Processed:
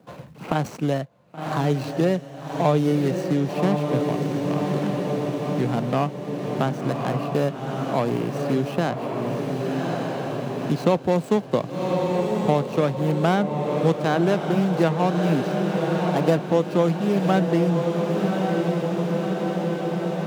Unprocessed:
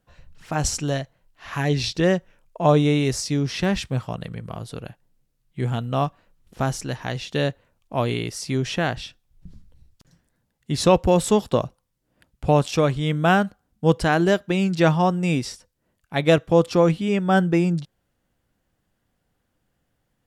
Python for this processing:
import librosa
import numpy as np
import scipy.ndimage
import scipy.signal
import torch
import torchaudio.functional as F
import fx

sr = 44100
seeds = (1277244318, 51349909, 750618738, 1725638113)

y = scipy.signal.medfilt(x, 25)
y = scipy.signal.sosfilt(scipy.signal.butter(4, 140.0, 'highpass', fs=sr, output='sos'), y)
y = fx.echo_diffused(y, sr, ms=1117, feedback_pct=59, wet_db=-6.5)
y = fx.band_squash(y, sr, depth_pct=70)